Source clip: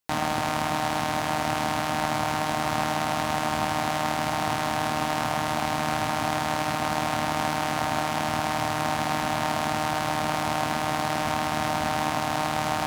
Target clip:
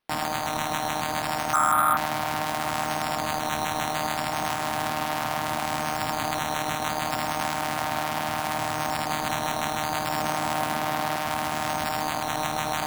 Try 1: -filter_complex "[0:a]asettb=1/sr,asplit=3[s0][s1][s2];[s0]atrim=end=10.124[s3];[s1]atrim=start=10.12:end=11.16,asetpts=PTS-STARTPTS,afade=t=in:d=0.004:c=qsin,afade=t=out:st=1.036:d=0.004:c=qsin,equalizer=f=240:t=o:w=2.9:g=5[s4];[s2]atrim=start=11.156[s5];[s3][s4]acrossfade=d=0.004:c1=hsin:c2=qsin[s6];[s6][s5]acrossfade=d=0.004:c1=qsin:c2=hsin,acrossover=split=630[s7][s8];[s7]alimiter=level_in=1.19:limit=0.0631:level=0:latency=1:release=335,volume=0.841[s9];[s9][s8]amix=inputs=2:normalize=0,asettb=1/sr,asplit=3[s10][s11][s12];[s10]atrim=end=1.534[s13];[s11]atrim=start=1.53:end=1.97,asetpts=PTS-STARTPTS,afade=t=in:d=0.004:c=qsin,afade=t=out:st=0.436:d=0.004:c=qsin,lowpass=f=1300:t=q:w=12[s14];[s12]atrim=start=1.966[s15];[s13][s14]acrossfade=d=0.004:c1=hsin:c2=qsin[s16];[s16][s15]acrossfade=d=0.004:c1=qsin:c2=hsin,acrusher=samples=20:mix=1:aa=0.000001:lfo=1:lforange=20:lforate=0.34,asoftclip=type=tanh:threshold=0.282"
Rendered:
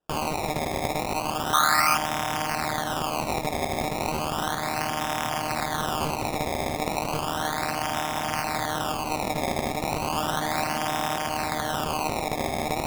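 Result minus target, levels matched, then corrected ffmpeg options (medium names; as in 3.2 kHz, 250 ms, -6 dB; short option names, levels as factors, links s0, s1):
decimation with a swept rate: distortion +14 dB
-filter_complex "[0:a]asettb=1/sr,asplit=3[s0][s1][s2];[s0]atrim=end=10.124[s3];[s1]atrim=start=10.12:end=11.16,asetpts=PTS-STARTPTS,afade=t=in:d=0.004:c=qsin,afade=t=out:st=1.036:d=0.004:c=qsin,equalizer=f=240:t=o:w=2.9:g=5[s4];[s2]atrim=start=11.156[s5];[s3][s4]acrossfade=d=0.004:c1=hsin:c2=qsin[s6];[s6][s5]acrossfade=d=0.004:c1=qsin:c2=hsin,acrossover=split=630[s7][s8];[s7]alimiter=level_in=1.19:limit=0.0631:level=0:latency=1:release=335,volume=0.841[s9];[s9][s8]amix=inputs=2:normalize=0,asettb=1/sr,asplit=3[s10][s11][s12];[s10]atrim=end=1.534[s13];[s11]atrim=start=1.53:end=1.97,asetpts=PTS-STARTPTS,afade=t=in:d=0.004:c=qsin,afade=t=out:st=0.436:d=0.004:c=qsin,lowpass=f=1300:t=q:w=12[s14];[s12]atrim=start=1.966[s15];[s13][s14]acrossfade=d=0.004:c1=hsin:c2=qsin[s16];[s16][s15]acrossfade=d=0.004:c1=qsin:c2=hsin,acrusher=samples=6:mix=1:aa=0.000001:lfo=1:lforange=6:lforate=0.34,asoftclip=type=tanh:threshold=0.282"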